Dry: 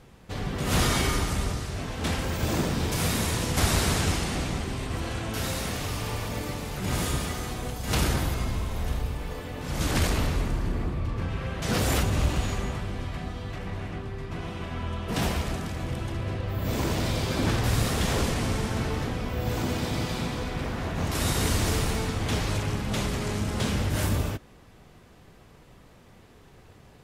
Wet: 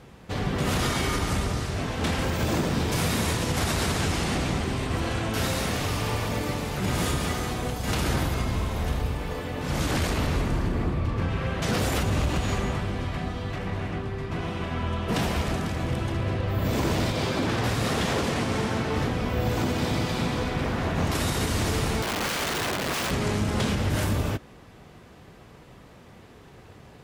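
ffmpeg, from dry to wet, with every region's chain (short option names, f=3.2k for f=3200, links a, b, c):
-filter_complex "[0:a]asettb=1/sr,asplit=3[a][b][c];[a]atrim=end=17.124[d];[b]atrim=start=17.12:end=18.96,asetpts=PTS-STARTPTS,afade=t=in:d=0.004:c=qsin,afade=t=out:st=1.836:d=0.004:c=qsin,highpass=f=130:p=1,highshelf=f=8.4k:g=-6[e];[c]atrim=start=18.956[f];[d][e]acrossfade=d=0.004:c1=hsin:c2=qsin[g];[g][f]acrossfade=d=0.004:c1=qsin:c2=hsin,asettb=1/sr,asplit=3[h][i][j];[h]atrim=end=22.024[k];[i]atrim=start=22.02:end=23.11,asetpts=PTS-STARTPTS,afade=t=in:d=0.004:c=qsin,afade=t=out:st=1.086:d=0.004:c=qsin,lowpass=3.4k,aeval=exprs='(mod(22.4*val(0)+1,2)-1)/22.4':c=same[l];[j]atrim=start=23.106[m];[k][l]acrossfade=d=0.004:c1=hsin:c2=qsin[n];[n][m]acrossfade=d=0.004:c1=qsin:c2=hsin,highpass=f=63:p=1,highshelf=f=5.4k:g=-5,alimiter=limit=-21dB:level=0:latency=1:release=122,volume=5dB"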